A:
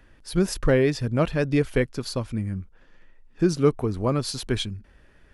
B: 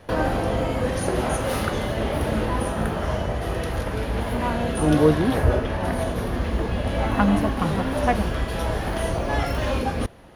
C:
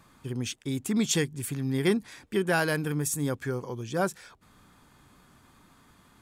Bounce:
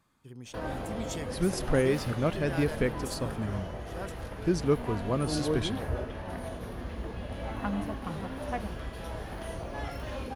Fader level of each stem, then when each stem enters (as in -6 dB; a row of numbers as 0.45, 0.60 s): -6.0, -13.0, -13.5 dB; 1.05, 0.45, 0.00 s